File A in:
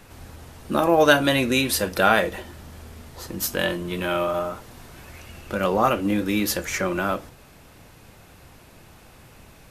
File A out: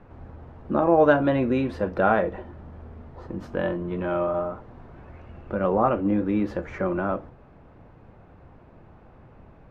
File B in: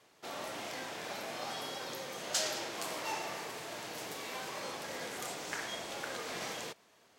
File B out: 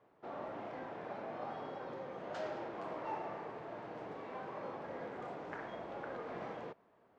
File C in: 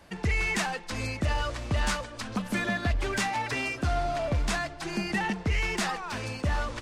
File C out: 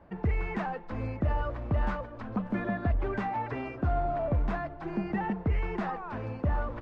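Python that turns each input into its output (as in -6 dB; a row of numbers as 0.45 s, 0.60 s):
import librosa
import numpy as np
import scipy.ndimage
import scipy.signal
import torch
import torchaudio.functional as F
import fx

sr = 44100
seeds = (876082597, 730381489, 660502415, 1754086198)

y = scipy.signal.sosfilt(scipy.signal.butter(2, 1100.0, 'lowpass', fs=sr, output='sos'), x)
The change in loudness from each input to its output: -2.0 LU, -5.5 LU, -2.5 LU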